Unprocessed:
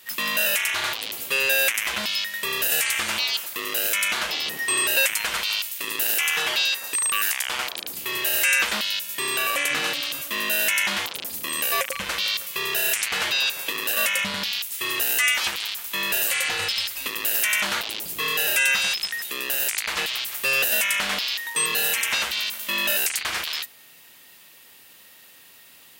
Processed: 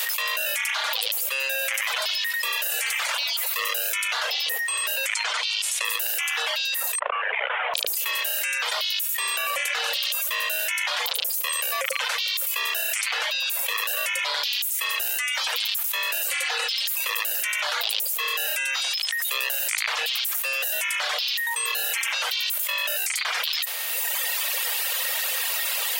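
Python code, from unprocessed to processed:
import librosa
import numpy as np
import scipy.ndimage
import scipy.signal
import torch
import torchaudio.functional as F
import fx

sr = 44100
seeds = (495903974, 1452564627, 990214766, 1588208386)

y = fx.echo_alternate(x, sr, ms=122, hz=2300.0, feedback_pct=53, wet_db=-6, at=(1.42, 3.63))
y = fx.lowpass(y, sr, hz=8800.0, slope=24, at=(5.07, 5.85))
y = fx.cvsd(y, sr, bps=16000, at=(6.99, 7.74))
y = fx.dereverb_blind(y, sr, rt60_s=1.2)
y = scipy.signal.sosfilt(scipy.signal.butter(12, 470.0, 'highpass', fs=sr, output='sos'), y)
y = fx.env_flatten(y, sr, amount_pct=100)
y = y * librosa.db_to_amplitude(-8.0)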